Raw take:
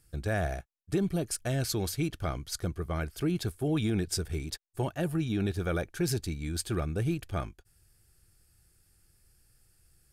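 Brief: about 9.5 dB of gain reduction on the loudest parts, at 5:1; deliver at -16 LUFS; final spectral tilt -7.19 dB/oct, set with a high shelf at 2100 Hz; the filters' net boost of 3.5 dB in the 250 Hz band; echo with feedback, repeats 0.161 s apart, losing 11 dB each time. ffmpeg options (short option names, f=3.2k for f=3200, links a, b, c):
-af "equalizer=f=250:t=o:g=5.5,highshelf=f=2.1k:g=-8,acompressor=threshold=-33dB:ratio=5,aecho=1:1:161|322|483:0.282|0.0789|0.0221,volume=21.5dB"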